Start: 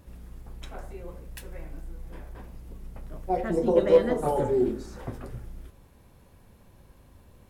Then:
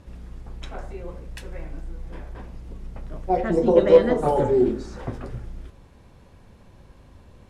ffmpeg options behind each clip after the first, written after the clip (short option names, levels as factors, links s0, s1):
-af "lowpass=6800,volume=1.78"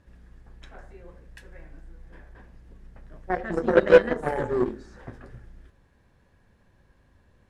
-af "aeval=exprs='0.668*(cos(1*acos(clip(val(0)/0.668,-1,1)))-cos(1*PI/2))+0.0944*(cos(3*acos(clip(val(0)/0.668,-1,1)))-cos(3*PI/2))+0.0299*(cos(7*acos(clip(val(0)/0.668,-1,1)))-cos(7*PI/2))':c=same,equalizer=f=1700:w=4.2:g=10.5"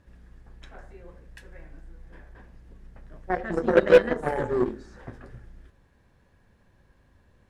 -af "asoftclip=type=hard:threshold=0.501"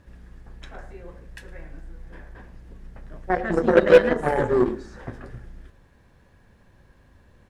-filter_complex "[0:a]asplit=2[s0][s1];[s1]alimiter=limit=0.168:level=0:latency=1:release=35,volume=0.891[s2];[s0][s2]amix=inputs=2:normalize=0,asplit=2[s3][s4];[s4]adelay=110.8,volume=0.126,highshelf=f=4000:g=-2.49[s5];[s3][s5]amix=inputs=2:normalize=0"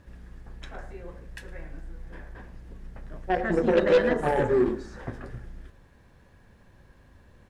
-af "asoftclip=type=tanh:threshold=0.211"